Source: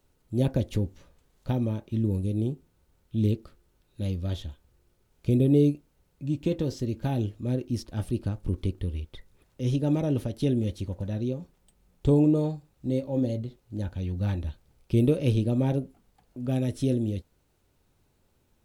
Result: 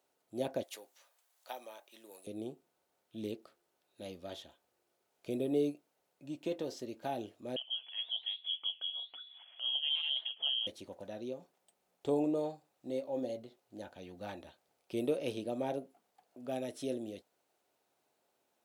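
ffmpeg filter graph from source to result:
-filter_complex "[0:a]asettb=1/sr,asplit=3[a][b][c];[a]atrim=end=0.634[d];[b]atrim=start=0.63:end=2.27,asetpts=PTS-STARTPTS,afade=t=in:d=0.004:c=qsin,afade=t=out:st=1.636:d=0.004:c=qsin,highpass=850,highshelf=f=7.4k:g=10.5[e];[c]atrim=start=2.266[f];[d][e]acrossfade=d=0.004:c1=hsin:c2=qsin[g];[g][f]acrossfade=d=0.004:c1=qsin:c2=hsin,asettb=1/sr,asplit=3[h][i][j];[h]atrim=end=7.564[k];[i]atrim=start=7.56:end=10.67,asetpts=PTS-STARTPTS,afade=t=in:d=0.004:c=qsin,afade=t=out:st=3.106:d=0.004:c=qsin,lowpass=f=2.9k:t=q:w=0.5098,lowpass=f=2.9k:t=q:w=0.6013,lowpass=f=2.9k:t=q:w=0.9,lowpass=f=2.9k:t=q:w=2.563,afreqshift=-3400,acompressor=mode=upward:threshold=-32dB:ratio=2.5:attack=3.2:release=140:knee=2.83:detection=peak,flanger=delay=2.3:depth=9.1:regen=-71:speed=1.1:shape=triangular[l];[j]atrim=start=10.666[m];[k][l]acrossfade=d=0.004:c1=hsin:c2=qsin[n];[n][m]acrossfade=d=0.004:c1=qsin:c2=hsin,highpass=400,equalizer=f=700:w=3.4:g=7.5,volume=-5.5dB"

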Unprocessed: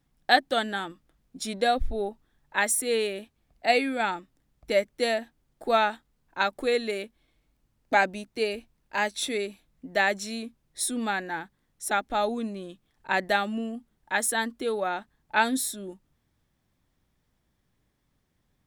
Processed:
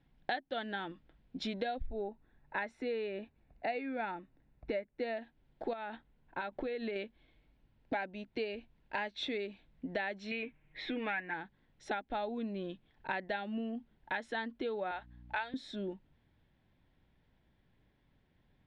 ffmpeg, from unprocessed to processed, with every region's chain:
-filter_complex "[0:a]asettb=1/sr,asplit=3[a][b][c];[a]atrim=end=1.864[d];[b]atrim=start=1.86:end=5.17,asetpts=PTS-STARTPTS,afade=t=in:d=0.004:c=qsin,afade=t=out:st=3.306:d=0.004:c=qsin,equalizer=f=8.9k:w=0.43:g=-10.5,bandreject=f=3.2k:w=6.7[e];[c]atrim=start=5.166[f];[d][e]acrossfade=d=0.004:c1=hsin:c2=qsin[g];[g][f]acrossfade=d=0.004:c1=qsin:c2=hsin,asettb=1/sr,asplit=3[h][i][j];[h]atrim=end=5.734[k];[i]atrim=start=5.73:end=6.96,asetpts=PTS-STARTPTS,afade=t=in:d=0.004:c=qsin,afade=t=out:st=1.226:d=0.004:c=qsin,acompressor=threshold=-31dB:ratio=5:attack=3.2:release=140:knee=1:detection=peak,aemphasis=mode=reproduction:type=50fm[l];[j]atrim=start=6.956[m];[k][l]acrossfade=d=0.004:c1=hsin:c2=qsin[n];[n][m]acrossfade=d=0.004:c1=qsin:c2=hsin,asettb=1/sr,asplit=3[o][p][q];[o]atrim=end=10.314[r];[p]atrim=start=10.31:end=11.34,asetpts=PTS-STARTPTS,afade=t=in:d=0.004:c=qsin,afade=t=out:st=1.026:d=0.004:c=qsin,lowpass=f=2.3k:t=q:w=4.1,aecho=1:1:6.5:0.52,atrim=end_sample=45423[s];[q]atrim=start=11.336[t];[r][s]acrossfade=d=0.004:c1=hsin:c2=qsin[u];[u][t]acrossfade=d=0.004:c1=qsin:c2=hsin,asettb=1/sr,asplit=3[v][w][x];[v]atrim=end=14.914[y];[w]atrim=start=14.91:end=15.54,asetpts=PTS-STARTPTS,afade=t=in:d=0.004:c=qsin,afade=t=out:st=0.626:d=0.004:c=qsin,highpass=630,aeval=exprs='val(0)+0.00178*(sin(2*PI*60*n/s)+sin(2*PI*2*60*n/s)/2+sin(2*PI*3*60*n/s)/3+sin(2*PI*4*60*n/s)/4+sin(2*PI*5*60*n/s)/5)':c=same[z];[x]atrim=start=15.536[aa];[y][z]acrossfade=d=0.004:c1=hsin:c2=qsin[ab];[ab][aa]acrossfade=d=0.004:c1=qsin:c2=hsin,lowpass=f=3.7k:w=0.5412,lowpass=f=3.7k:w=1.3066,bandreject=f=1.2k:w=5.9,acompressor=threshold=-37dB:ratio=6,volume=2dB"

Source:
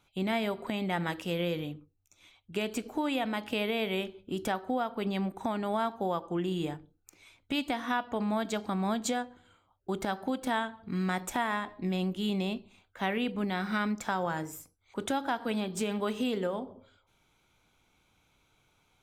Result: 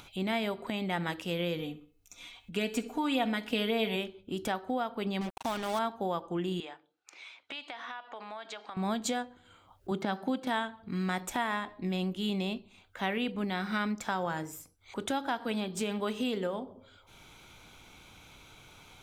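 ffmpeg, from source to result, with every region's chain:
-filter_complex "[0:a]asettb=1/sr,asplit=3[a][b][c];[a]atrim=end=1.594[d];[b]atrim=start=1.59:end=3.96,asetpts=PTS-STARTPTS,afade=t=in:d=0.004:c=qsin,afade=t=out:st=2.366:d=0.004:c=qsin,aecho=1:1:4.2:0.6,atrim=end_sample=104517,bandreject=f=431.7:t=h:w=4,bandreject=f=863.4:t=h:w=4,bandreject=f=1.2951k:t=h:w=4,bandreject=f=1.7268k:t=h:w=4,bandreject=f=2.1585k:t=h:w=4,bandreject=f=2.5902k:t=h:w=4,bandreject=f=3.0219k:t=h:w=4,bandreject=f=3.4536k:t=h:w=4,bandreject=f=3.8853k:t=h:w=4,bandreject=f=4.317k:t=h:w=4,bandreject=f=4.7487k:t=h:w=4,bandreject=f=5.1804k:t=h:w=4,bandreject=f=5.6121k:t=h:w=4,bandreject=f=6.0438k:t=h:w=4,bandreject=f=6.4755k:t=h:w=4,bandreject=f=6.9072k:t=h:w=4,bandreject=f=7.3389k:t=h:w=4,bandreject=f=7.7706k:t=h:w=4,bandreject=f=8.2023k:t=h:w=4,bandreject=f=8.634k:t=h:w=4,bandreject=f=9.0657k:t=h:w=4,bandreject=f=9.4974k:t=h:w=4,bandreject=f=9.9291k:t=h:w=4,bandreject=f=10.3608k:t=h:w=4,bandreject=f=10.7925k:t=h:w=4,bandreject=f=11.2242k:t=h:w=4,bandreject=f=11.6559k:t=h:w=4,bandreject=f=12.0876k:t=h:w=4,bandreject=f=12.5193k:t=h:w=4,bandreject=f=12.951k:t=h:w=4,bandreject=f=13.3827k:t=h:w=4,bandreject=f=13.8144k:t=h:w=4,bandreject=f=14.2461k:t=h:w=4,bandreject=f=14.6778k:t=h:w=4,bandreject=f=15.1095k:t=h:w=4,aecho=1:1:64|128|192:0.112|0.0426|0.0162,atrim=end_sample=104517[e];[c]atrim=start=3.956[f];[d][e]acrossfade=d=0.004:c1=hsin:c2=qsin[g];[g][f]acrossfade=d=0.004:c1=qsin:c2=hsin,asettb=1/sr,asplit=3[h][i][j];[h]atrim=end=5.214[k];[i]atrim=start=5.21:end=5.79,asetpts=PTS-STARTPTS,afade=t=in:d=0.004:c=qsin,afade=t=out:st=0.576:d=0.004:c=qsin,tiltshelf=f=630:g=-4.5,acrusher=bits=5:mix=0:aa=0.5[l];[j]atrim=start=5.786[m];[k][l]acrossfade=d=0.004:c1=hsin:c2=qsin[n];[n][m]acrossfade=d=0.004:c1=qsin:c2=hsin,asettb=1/sr,asplit=3[o][p][q];[o]atrim=end=6.604[r];[p]atrim=start=6.6:end=8.77,asetpts=PTS-STARTPTS,afade=t=in:d=0.004:c=qsin,afade=t=out:st=2.166:d=0.004:c=qsin,highpass=710,lowpass=4.2k,acompressor=threshold=-37dB:ratio=4:attack=3.2:release=140:knee=1:detection=peak[s];[q]atrim=start=8.766[t];[r][s]acrossfade=d=0.004:c1=hsin:c2=qsin[u];[u][t]acrossfade=d=0.004:c1=qsin:c2=hsin,asettb=1/sr,asplit=3[v][w][x];[v]atrim=end=9.914[y];[w]atrim=start=9.91:end=10.47,asetpts=PTS-STARTPTS,afade=t=in:d=0.004:c=qsin,afade=t=out:st=0.556:d=0.004:c=qsin,acrossover=split=5100[z][aa];[aa]acompressor=threshold=-59dB:ratio=4:attack=1:release=60[ab];[z][ab]amix=inputs=2:normalize=0,highpass=f=160:t=q:w=1.5[ac];[x]atrim=start=10.466[ad];[y][ac]acrossfade=d=0.004:c1=hsin:c2=qsin[ae];[ae][ad]acrossfade=d=0.004:c1=qsin:c2=hsin,acompressor=mode=upward:threshold=-39dB:ratio=2.5,equalizer=f=3.6k:t=o:w=1.5:g=2.5,volume=-1.5dB"

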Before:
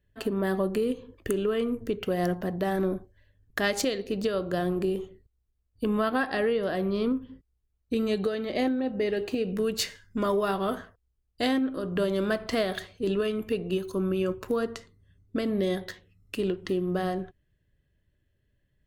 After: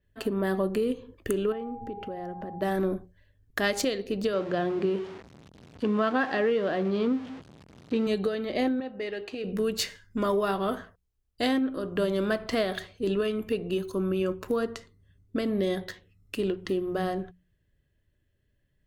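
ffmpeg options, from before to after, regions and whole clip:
-filter_complex "[0:a]asettb=1/sr,asplit=3[a][b][c];[a]atrim=end=1.524[d];[b]atrim=start=1.52:end=2.62,asetpts=PTS-STARTPTS,afade=t=in:d=0.004:c=qsin,afade=t=out:st=1.096:d=0.004:c=qsin,lowpass=f=1.2k:p=1,acompressor=threshold=-35dB:ratio=3:attack=3.2:release=140:knee=1:detection=peak,aeval=exprs='val(0)+0.01*sin(2*PI*810*n/s)':c=same[e];[c]atrim=start=2.616[f];[d][e]acrossfade=d=0.004:c1=hsin:c2=qsin[g];[g][f]acrossfade=d=0.004:c1=qsin:c2=hsin,asettb=1/sr,asplit=3[h][i][j];[h]atrim=end=4.334[k];[i]atrim=start=4.33:end=8.07,asetpts=PTS-STARTPTS,afade=t=in:d=0.004:c=qsin,afade=t=out:st=3.736:d=0.004:c=qsin,aeval=exprs='val(0)+0.5*0.0141*sgn(val(0))':c=same,highpass=130,lowpass=4.1k[l];[j]atrim=start=8.066[m];[k][l]acrossfade=d=0.004:c1=hsin:c2=qsin[n];[n][m]acrossfade=d=0.004:c1=qsin:c2=hsin,asettb=1/sr,asplit=3[o][p][q];[o]atrim=end=8.804[r];[p]atrim=start=8.8:end=9.44,asetpts=PTS-STARTPTS,afade=t=in:d=0.004:c=qsin,afade=t=out:st=0.636:d=0.004:c=qsin,lowshelf=f=500:g=-11.5,adynamicsmooth=sensitivity=4.5:basefreq=5.2k[s];[q]atrim=start=9.436[t];[r][s]acrossfade=d=0.004:c1=hsin:c2=qsin[u];[u][t]acrossfade=d=0.004:c1=qsin:c2=hsin,bandreject=f=60:t=h:w=6,bandreject=f=120:t=h:w=6,bandreject=f=180:t=h:w=6,adynamicequalizer=threshold=0.00447:dfrequency=5300:dqfactor=0.7:tfrequency=5300:tqfactor=0.7:attack=5:release=100:ratio=0.375:range=1.5:mode=cutabove:tftype=highshelf"

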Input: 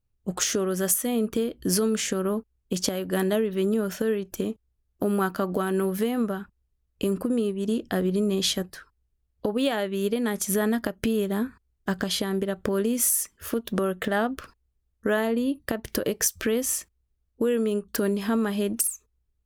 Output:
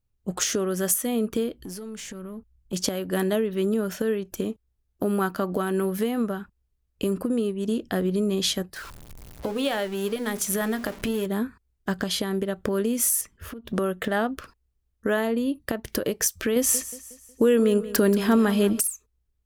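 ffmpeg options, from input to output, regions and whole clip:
-filter_complex "[0:a]asettb=1/sr,asplit=3[a][b][c];[a]atrim=end=1.644[d];[b]atrim=start=1.64:end=2.73,asetpts=PTS-STARTPTS,afade=t=in:d=0.004:c=qsin,afade=t=out:st=1.086:d=0.004:c=qsin,asubboost=boost=10:cutoff=200,acompressor=threshold=-33dB:ratio=5:attack=3.2:release=140:knee=1:detection=peak,aeval=exprs='(tanh(28.2*val(0)+0.25)-tanh(0.25))/28.2':c=same[e];[c]atrim=start=2.726[f];[d][e]acrossfade=d=0.004:c1=hsin:c2=qsin[g];[g][f]acrossfade=d=0.004:c1=qsin:c2=hsin,asettb=1/sr,asplit=3[h][i][j];[h]atrim=end=8.764[k];[i]atrim=start=8.76:end=11.26,asetpts=PTS-STARTPTS,afade=t=in:d=0.004:c=qsin,afade=t=out:st=2.496:d=0.004:c=qsin,aeval=exprs='val(0)+0.5*0.0188*sgn(val(0))':c=same,equalizer=f=210:t=o:w=2.4:g=-3.5,bandreject=f=60:t=h:w=6,bandreject=f=120:t=h:w=6,bandreject=f=180:t=h:w=6,bandreject=f=240:t=h:w=6,bandreject=f=300:t=h:w=6,bandreject=f=360:t=h:w=6,bandreject=f=420:t=h:w=6,bandreject=f=480:t=h:w=6,bandreject=f=540:t=h:w=6[l];[j]atrim=start=11.256[m];[k][l]acrossfade=d=0.004:c1=hsin:c2=qsin[n];[n][m]acrossfade=d=0.004:c1=qsin:c2=hsin,asettb=1/sr,asplit=3[o][p][q];[o]atrim=end=13.214[r];[p]atrim=start=13.21:end=13.73,asetpts=PTS-STARTPTS,afade=t=in:d=0.004:c=qsin,afade=t=out:st=0.516:d=0.004:c=qsin,bass=f=250:g=8,treble=f=4k:g=-8,acompressor=threshold=-33dB:ratio=16:attack=3.2:release=140:knee=1:detection=peak[s];[q]atrim=start=13.726[t];[r][s]acrossfade=d=0.004:c1=hsin:c2=qsin[u];[u][t]acrossfade=d=0.004:c1=qsin:c2=hsin,asettb=1/sr,asplit=3[v][w][x];[v]atrim=end=16.564[y];[w]atrim=start=16.56:end=18.8,asetpts=PTS-STARTPTS,afade=t=in:d=0.004:c=qsin,afade=t=out:st=2.236:d=0.004:c=qsin,acontrast=26,aecho=1:1:182|364|546|728:0.178|0.0782|0.0344|0.0151,atrim=end_sample=98784[z];[x]atrim=start=18.796[aa];[y][z]acrossfade=d=0.004:c1=hsin:c2=qsin[ab];[ab][aa]acrossfade=d=0.004:c1=qsin:c2=hsin"

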